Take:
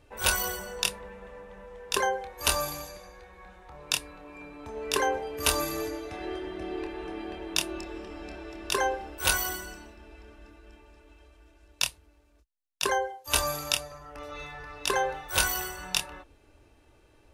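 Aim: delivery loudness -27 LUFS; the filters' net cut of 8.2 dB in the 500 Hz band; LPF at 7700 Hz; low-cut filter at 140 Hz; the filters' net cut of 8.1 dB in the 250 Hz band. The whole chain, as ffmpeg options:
-af "highpass=140,lowpass=7.7k,equalizer=f=250:t=o:g=-8,equalizer=f=500:t=o:g=-7.5,volume=5dB"

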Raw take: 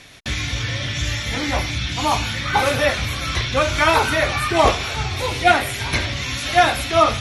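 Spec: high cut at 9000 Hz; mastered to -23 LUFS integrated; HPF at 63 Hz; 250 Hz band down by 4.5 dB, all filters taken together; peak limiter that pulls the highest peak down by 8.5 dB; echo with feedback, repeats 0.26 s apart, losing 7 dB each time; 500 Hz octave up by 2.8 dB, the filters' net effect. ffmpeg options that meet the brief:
-af "highpass=63,lowpass=9k,equalizer=f=250:t=o:g=-9,equalizer=f=500:t=o:g=5.5,alimiter=limit=-9dB:level=0:latency=1,aecho=1:1:260|520|780|1040|1300:0.447|0.201|0.0905|0.0407|0.0183,volume=-3dB"

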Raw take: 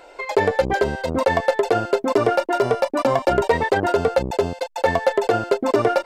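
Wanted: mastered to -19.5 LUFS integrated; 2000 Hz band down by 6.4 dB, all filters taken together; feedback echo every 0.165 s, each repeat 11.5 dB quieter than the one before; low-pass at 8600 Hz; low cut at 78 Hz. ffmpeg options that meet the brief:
-af "highpass=78,lowpass=8.6k,equalizer=f=2k:t=o:g=-8.5,aecho=1:1:165|330|495:0.266|0.0718|0.0194,volume=1.5dB"

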